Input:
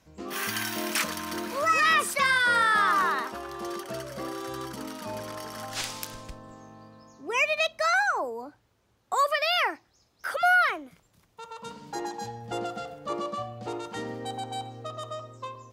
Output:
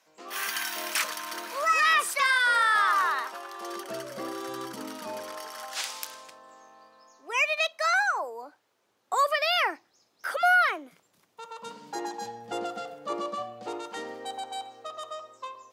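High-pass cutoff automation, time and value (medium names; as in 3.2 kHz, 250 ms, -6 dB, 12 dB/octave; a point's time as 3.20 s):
3.56 s 620 Hz
3.98 s 200 Hz
4.94 s 200 Hz
5.55 s 650 Hz
8.12 s 650 Hz
9.21 s 250 Hz
13.42 s 250 Hz
14.60 s 590 Hz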